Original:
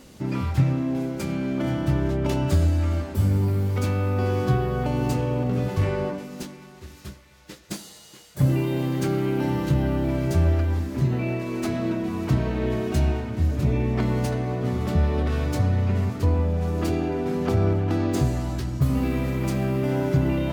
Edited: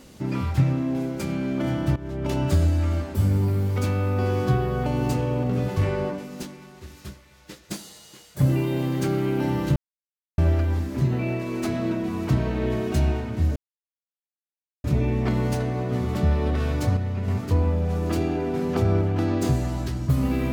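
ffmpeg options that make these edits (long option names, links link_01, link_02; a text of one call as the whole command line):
ffmpeg -i in.wav -filter_complex "[0:a]asplit=7[link_01][link_02][link_03][link_04][link_05][link_06][link_07];[link_01]atrim=end=1.96,asetpts=PTS-STARTPTS,afade=type=out:start_time=1.956:duration=0.004:curve=hsin:silence=0.141254[link_08];[link_02]atrim=start=1.96:end=9.76,asetpts=PTS-STARTPTS,afade=type=in:duration=0.44:silence=0.141254,afade=type=out:start_time=7.796:duration=0.004:curve=hsin[link_09];[link_03]atrim=start=9.76:end=10.38,asetpts=PTS-STARTPTS,volume=0[link_10];[link_04]atrim=start=10.38:end=13.56,asetpts=PTS-STARTPTS,afade=type=in:duration=0.004:curve=hsin,afade=type=out:start_time=3.176:duration=0.004:curve=hsin,apad=pad_dur=1.28[link_11];[link_05]atrim=start=13.56:end=15.692,asetpts=PTS-STARTPTS,afade=type=in:duration=0.004:curve=hsin[link_12];[link_06]atrim=start=15.688:end=16.002,asetpts=PTS-STARTPTS,volume=-5dB[link_13];[link_07]atrim=start=15.998[link_14];[link_08][link_09][link_10][link_11][link_12]concat=n=5:v=0:a=1[link_15];[link_15][link_13]acrossfade=duration=0.004:curve1=hsin:curve2=hsin[link_16];[link_16][link_14]acrossfade=duration=0.004:curve1=hsin:curve2=hsin" out.wav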